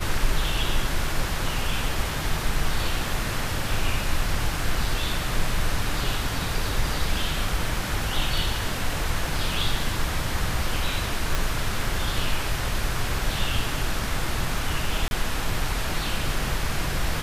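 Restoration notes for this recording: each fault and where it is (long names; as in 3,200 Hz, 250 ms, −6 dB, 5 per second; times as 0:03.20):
0:11.35: click
0:15.08–0:15.11: drop-out 31 ms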